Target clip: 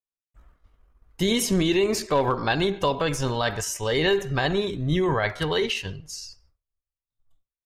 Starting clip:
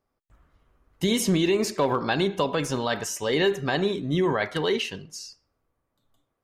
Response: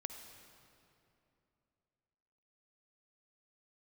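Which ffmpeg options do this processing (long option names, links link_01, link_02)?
-af "agate=range=-33dB:threshold=-57dB:ratio=3:detection=peak,asubboost=boost=9.5:cutoff=77,atempo=0.84,volume=2dB"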